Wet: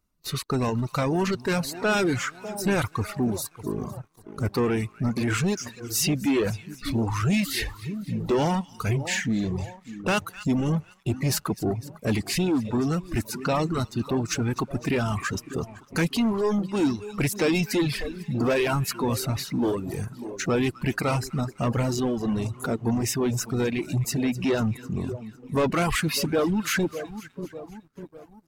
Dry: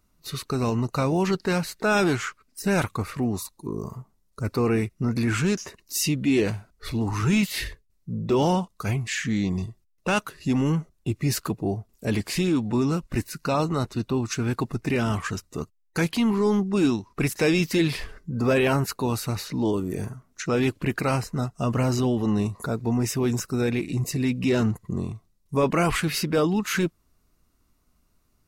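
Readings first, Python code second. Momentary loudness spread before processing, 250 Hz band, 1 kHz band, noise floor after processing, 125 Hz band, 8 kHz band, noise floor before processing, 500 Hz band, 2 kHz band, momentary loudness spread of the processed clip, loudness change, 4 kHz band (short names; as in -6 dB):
11 LU, -1.0 dB, -0.5 dB, -54 dBFS, -1.0 dB, +1.5 dB, -67 dBFS, -1.0 dB, -0.5 dB, 9 LU, -1.0 dB, +0.5 dB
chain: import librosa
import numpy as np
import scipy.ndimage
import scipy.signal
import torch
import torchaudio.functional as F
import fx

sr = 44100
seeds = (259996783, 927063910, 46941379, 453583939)

y = fx.echo_split(x, sr, split_hz=970.0, low_ms=598, high_ms=252, feedback_pct=52, wet_db=-13.0)
y = fx.leveller(y, sr, passes=2)
y = fx.dereverb_blind(y, sr, rt60_s=1.4)
y = y * librosa.db_to_amplitude(-4.5)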